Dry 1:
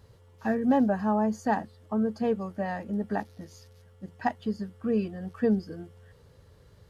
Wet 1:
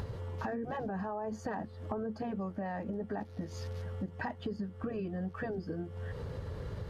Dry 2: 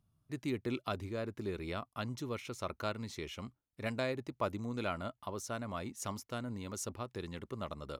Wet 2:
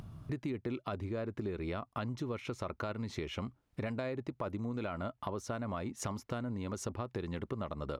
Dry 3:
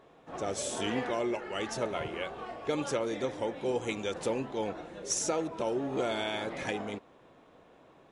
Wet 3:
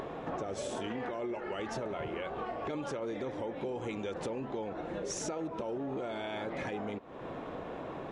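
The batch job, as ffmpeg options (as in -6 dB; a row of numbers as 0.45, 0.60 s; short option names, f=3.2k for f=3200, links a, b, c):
-filter_complex "[0:a]lowpass=f=1.8k:p=1,afftfilt=real='re*lt(hypot(re,im),0.398)':imag='im*lt(hypot(re,im),0.398)':win_size=1024:overlap=0.75,asplit=2[a][b];[b]acompressor=mode=upward:threshold=-36dB:ratio=2.5,volume=-1.5dB[c];[a][c]amix=inputs=2:normalize=0,alimiter=limit=-23.5dB:level=0:latency=1:release=18,acompressor=threshold=-41dB:ratio=6,volume=6dB"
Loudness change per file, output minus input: -10.0, +1.0, -4.5 LU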